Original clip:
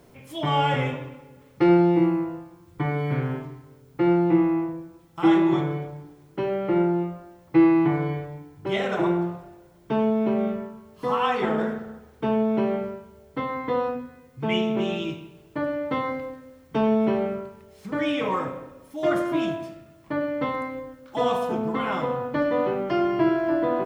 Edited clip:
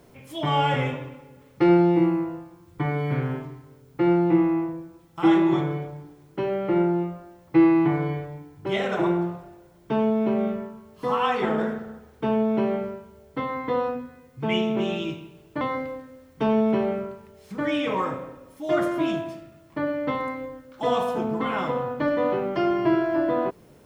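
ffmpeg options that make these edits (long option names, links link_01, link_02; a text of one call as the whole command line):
ffmpeg -i in.wav -filter_complex "[0:a]asplit=2[link_01][link_02];[link_01]atrim=end=15.612[link_03];[link_02]atrim=start=15.948[link_04];[link_03][link_04]acrossfade=duration=0.004:curve1=hsin:curve2=hsin" out.wav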